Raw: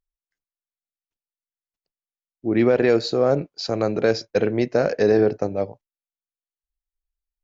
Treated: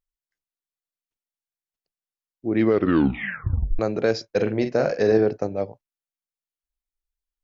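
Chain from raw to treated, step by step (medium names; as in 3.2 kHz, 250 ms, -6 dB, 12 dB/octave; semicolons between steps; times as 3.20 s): 2.56 s: tape stop 1.23 s; 4.31–5.18 s: doubling 46 ms -8 dB; trim -2 dB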